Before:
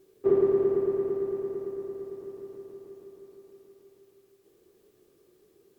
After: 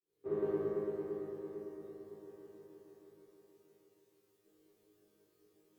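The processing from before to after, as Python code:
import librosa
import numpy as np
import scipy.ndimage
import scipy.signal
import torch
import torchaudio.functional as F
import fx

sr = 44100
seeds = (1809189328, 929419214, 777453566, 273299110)

y = fx.fade_in_head(x, sr, length_s=0.52)
y = fx.cheby_harmonics(y, sr, harmonics=(3,), levels_db=(-24,), full_scale_db=-14.5)
y = fx.resonator_bank(y, sr, root=44, chord='fifth', decay_s=0.55)
y = y * librosa.db_to_amplitude(10.5)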